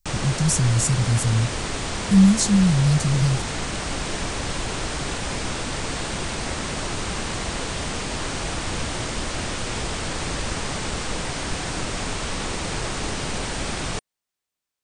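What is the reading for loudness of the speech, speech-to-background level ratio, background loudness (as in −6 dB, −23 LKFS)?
−20.0 LKFS, 7.5 dB, −27.5 LKFS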